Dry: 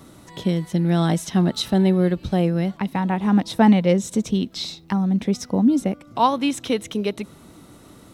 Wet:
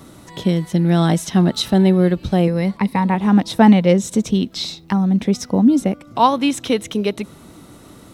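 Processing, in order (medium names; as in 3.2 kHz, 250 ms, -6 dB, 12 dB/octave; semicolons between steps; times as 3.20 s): 2.47–3.15 s: rippled EQ curve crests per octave 0.92, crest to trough 8 dB; trim +4 dB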